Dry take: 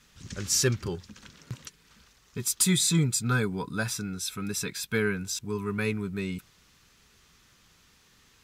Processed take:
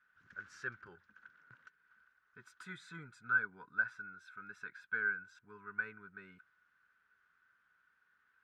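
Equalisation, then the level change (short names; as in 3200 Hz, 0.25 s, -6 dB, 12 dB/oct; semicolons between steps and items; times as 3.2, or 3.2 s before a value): band-pass 1500 Hz, Q 13; tilt -3 dB/oct; +5.0 dB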